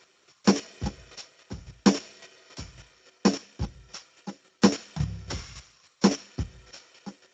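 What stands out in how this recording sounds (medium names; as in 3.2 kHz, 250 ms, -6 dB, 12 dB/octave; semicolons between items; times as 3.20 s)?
a buzz of ramps at a fixed pitch in blocks of 8 samples; chopped level 3.6 Hz, depth 60%, duty 15%; a quantiser's noise floor 12-bit, dither none; Speex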